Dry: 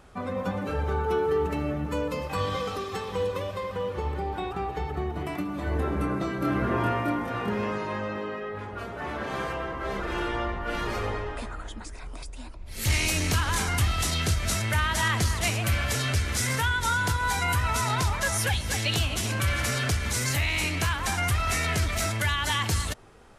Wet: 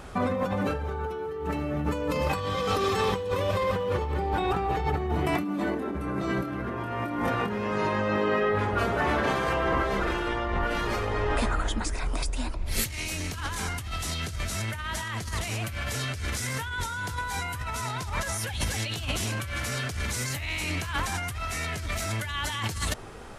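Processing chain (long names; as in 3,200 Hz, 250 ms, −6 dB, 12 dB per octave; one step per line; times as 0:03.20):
0:05.43–0:05.95: low shelf with overshoot 150 Hz −13 dB, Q 3
compressor whose output falls as the input rises −34 dBFS, ratio −1
level +4.5 dB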